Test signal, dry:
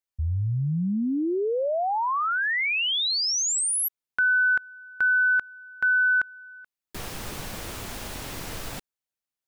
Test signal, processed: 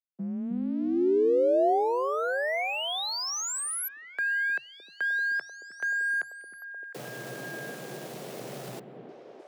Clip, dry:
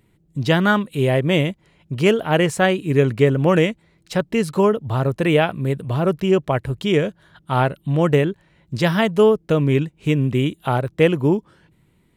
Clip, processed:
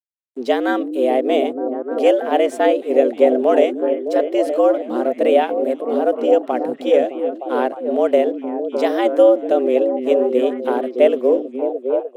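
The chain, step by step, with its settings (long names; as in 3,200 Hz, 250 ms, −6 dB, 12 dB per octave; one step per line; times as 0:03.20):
dead-zone distortion −45 dBFS
frequency shifter +120 Hz
flat-topped bell 510 Hz +9.5 dB 1.3 octaves
on a send: echo through a band-pass that steps 306 ms, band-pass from 230 Hz, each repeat 0.7 octaves, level −1.5 dB
on the sum: level −6.5 dB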